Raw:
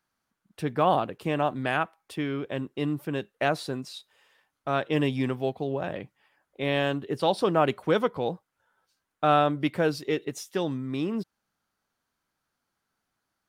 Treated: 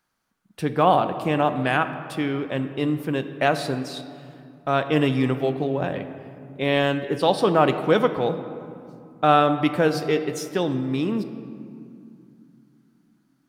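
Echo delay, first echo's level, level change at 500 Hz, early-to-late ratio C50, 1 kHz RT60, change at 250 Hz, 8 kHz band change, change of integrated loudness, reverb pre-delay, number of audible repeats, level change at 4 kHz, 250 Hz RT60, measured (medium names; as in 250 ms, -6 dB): no echo, no echo, +5.0 dB, 10.5 dB, 2.4 s, +5.5 dB, +4.5 dB, +5.0 dB, 4 ms, no echo, +5.0 dB, 3.8 s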